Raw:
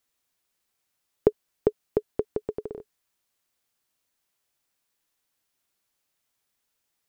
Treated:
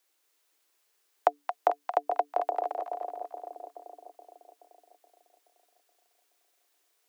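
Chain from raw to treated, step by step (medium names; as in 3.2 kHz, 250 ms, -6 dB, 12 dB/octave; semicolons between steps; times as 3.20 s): peaking EQ 150 Hz +7.5 dB 0.24 oct; frequency shift +290 Hz; compression 2:1, threshold -28 dBFS, peak gain reduction 8.5 dB; two-band feedback delay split 800 Hz, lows 425 ms, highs 223 ms, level -5 dB; dynamic bell 320 Hz, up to -6 dB, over -51 dBFS, Q 1.7; trim +4 dB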